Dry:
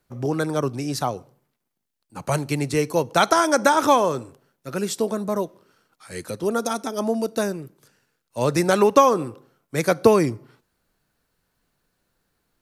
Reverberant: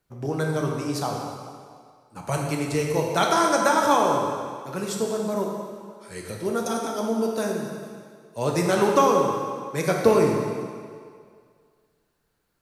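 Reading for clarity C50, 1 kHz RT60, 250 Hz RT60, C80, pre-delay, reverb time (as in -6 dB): 2.0 dB, 2.1 s, 1.8 s, 3.0 dB, 3 ms, 2.1 s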